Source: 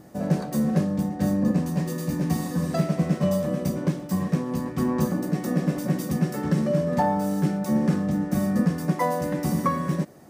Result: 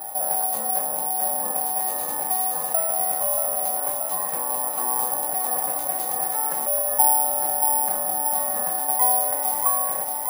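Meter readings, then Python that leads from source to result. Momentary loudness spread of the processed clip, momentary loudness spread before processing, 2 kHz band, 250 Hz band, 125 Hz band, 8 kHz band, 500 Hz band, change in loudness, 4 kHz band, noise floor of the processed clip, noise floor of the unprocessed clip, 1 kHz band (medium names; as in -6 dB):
6 LU, 4 LU, -2.0 dB, -23.0 dB, under -25 dB, +19.5 dB, -2.5 dB, +4.0 dB, -2.5 dB, -28 dBFS, -36 dBFS, +6.0 dB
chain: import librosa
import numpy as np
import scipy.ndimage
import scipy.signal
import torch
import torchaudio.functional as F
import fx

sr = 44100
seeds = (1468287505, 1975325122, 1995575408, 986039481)

p1 = fx.highpass_res(x, sr, hz=790.0, q=9.0)
p2 = fx.high_shelf(p1, sr, hz=5700.0, db=-10.0)
p3 = p2 + fx.echo_feedback(p2, sr, ms=631, feedback_pct=56, wet_db=-9, dry=0)
p4 = (np.kron(p3[::4], np.eye(4)[0]) * 4)[:len(p3)]
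p5 = fx.env_flatten(p4, sr, amount_pct=50)
y = p5 * 10.0 ** (-13.0 / 20.0)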